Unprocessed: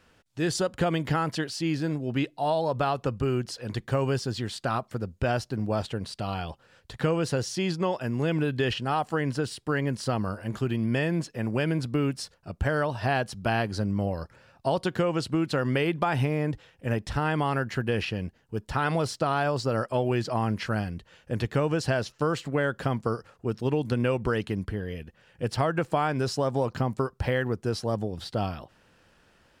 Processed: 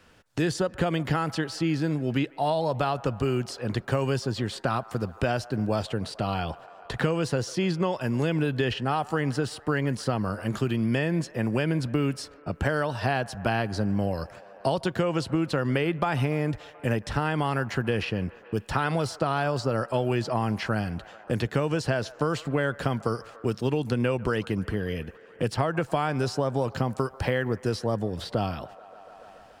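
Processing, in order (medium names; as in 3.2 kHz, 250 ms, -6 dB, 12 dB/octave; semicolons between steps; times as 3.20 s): gate -50 dBFS, range -17 dB; feedback echo behind a band-pass 144 ms, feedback 66%, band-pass 1 kHz, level -20.5 dB; three bands compressed up and down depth 70%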